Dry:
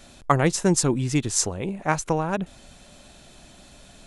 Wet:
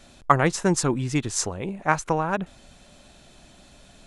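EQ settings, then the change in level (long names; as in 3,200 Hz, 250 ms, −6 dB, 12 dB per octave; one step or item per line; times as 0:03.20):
dynamic equaliser 1,300 Hz, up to +6 dB, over −37 dBFS, Q 0.81
high-shelf EQ 9,300 Hz −5.5 dB
−2.0 dB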